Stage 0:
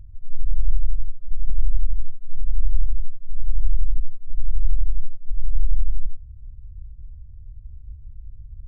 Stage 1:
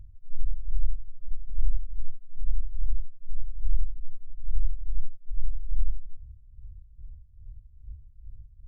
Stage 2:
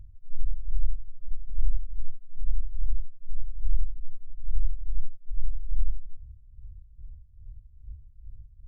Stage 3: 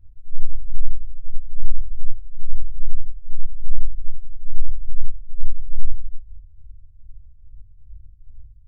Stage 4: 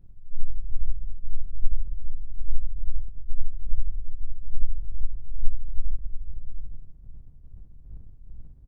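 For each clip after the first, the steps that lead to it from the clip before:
tremolo 2.4 Hz, depth 77%; trim -3.5 dB
no audible change
reverberation RT60 0.75 s, pre-delay 4 ms, DRR -6 dB; trim -10 dB
comb filter that takes the minimum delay 5.2 ms; on a send: multi-tap echo 86/427/694 ms -18.5/-10/-10 dB

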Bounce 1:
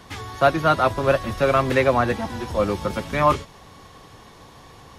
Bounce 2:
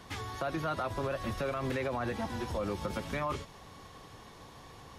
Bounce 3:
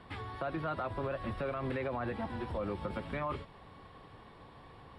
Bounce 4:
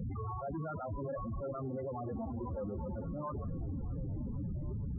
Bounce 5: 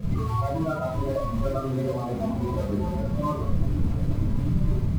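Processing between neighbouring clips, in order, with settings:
peak limiter -16 dBFS, peak gain reduction 11.5 dB; compression 2:1, threshold -27 dBFS, peak gain reduction 4 dB; trim -5.5 dB
boxcar filter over 7 samples; trim -2 dB
Schmitt trigger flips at -52 dBFS; loudest bins only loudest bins 8; repeats whose band climbs or falls 470 ms, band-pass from 220 Hz, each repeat 0.7 oct, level -9 dB; trim +3 dB
in parallel at -11.5 dB: bit crusher 6-bit; on the sum: saturation -29.5 dBFS, distortion -22 dB; simulated room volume 310 m³, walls furnished, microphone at 5.6 m

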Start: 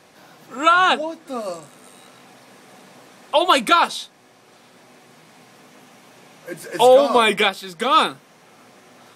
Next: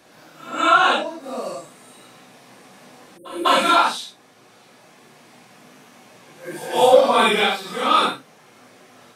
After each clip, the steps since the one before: phase randomisation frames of 200 ms; spectral selection erased 3.17–3.45 s, 550–8400 Hz; pre-echo 199 ms -21.5 dB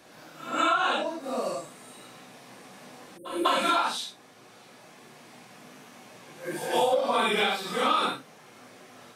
compression 12:1, threshold -19 dBFS, peak gain reduction 13 dB; trim -1.5 dB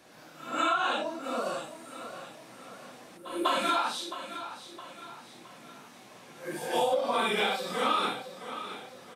feedback delay 665 ms, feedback 46%, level -12 dB; trim -3 dB

